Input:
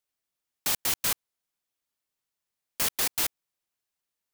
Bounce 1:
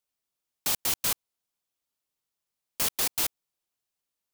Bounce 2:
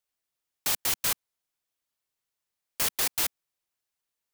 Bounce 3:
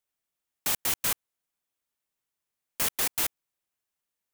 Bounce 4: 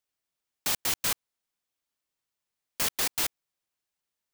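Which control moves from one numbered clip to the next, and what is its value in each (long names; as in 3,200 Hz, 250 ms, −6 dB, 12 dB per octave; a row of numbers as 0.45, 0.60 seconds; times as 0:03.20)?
parametric band, centre frequency: 1,800, 220, 4,600, 13,000 Hertz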